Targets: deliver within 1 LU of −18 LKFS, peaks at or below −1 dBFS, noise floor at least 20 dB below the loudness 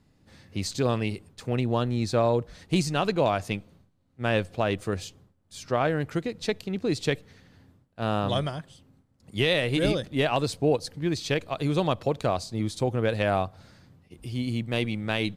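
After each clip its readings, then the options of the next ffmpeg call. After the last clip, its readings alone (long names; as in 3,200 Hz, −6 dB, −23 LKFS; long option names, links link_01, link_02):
integrated loudness −27.5 LKFS; sample peak −11.5 dBFS; target loudness −18.0 LKFS
→ -af "volume=9.5dB"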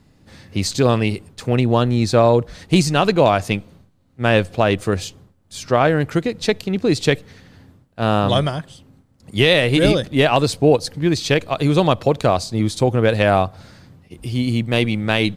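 integrated loudness −18.0 LKFS; sample peak −2.0 dBFS; background noise floor −56 dBFS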